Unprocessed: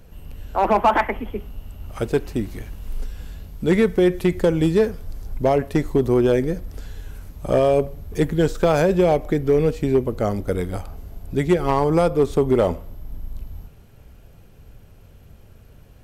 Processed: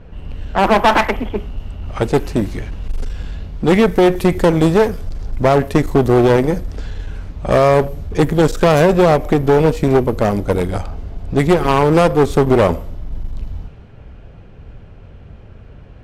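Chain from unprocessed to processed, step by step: one-sided clip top -28.5 dBFS, bottom -11 dBFS; vibrato 0.3 Hz 8.8 cents; low-pass opened by the level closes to 2400 Hz, open at -20.5 dBFS; gain +9 dB

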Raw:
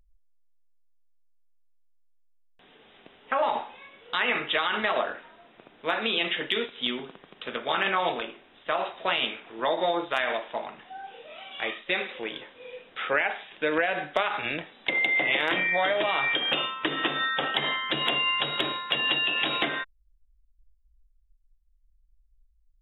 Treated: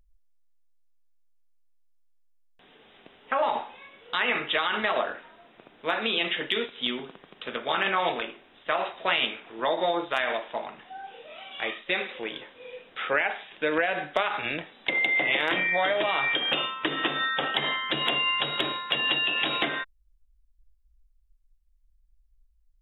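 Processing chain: 7.97–9.26 dynamic EQ 2000 Hz, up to +4 dB, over -42 dBFS, Q 1.8

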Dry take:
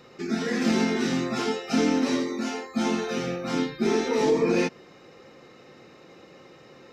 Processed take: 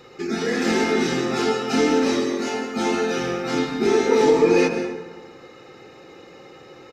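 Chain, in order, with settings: comb 2.4 ms, depth 41%; plate-style reverb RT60 1.3 s, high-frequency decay 0.45×, pre-delay 0.115 s, DRR 5 dB; gain +3.5 dB

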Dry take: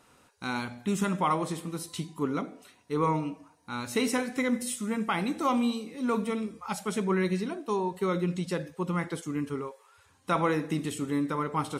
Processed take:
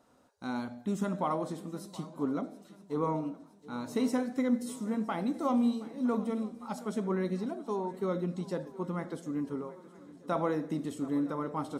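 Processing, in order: fifteen-band EQ 250 Hz +8 dB, 630 Hz +9 dB, 2500 Hz -8 dB, 10000 Hz -5 dB; swung echo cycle 0.964 s, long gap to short 3:1, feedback 50%, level -19 dB; gain -8 dB

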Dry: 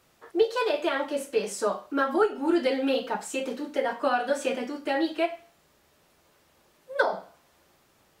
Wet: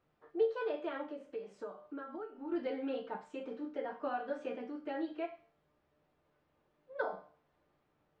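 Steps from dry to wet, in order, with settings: 1.03–2.52 compressor 6:1, threshold -30 dBFS, peak gain reduction 12 dB; tape spacing loss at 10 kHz 34 dB; resonator 150 Hz, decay 0.37 s, harmonics all, mix 70%; gain -1.5 dB

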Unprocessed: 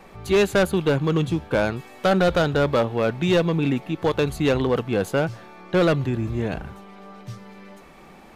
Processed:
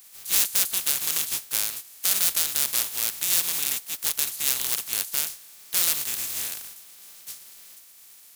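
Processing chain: spectral contrast lowered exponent 0.26; pre-emphasis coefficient 0.9; gain -2 dB

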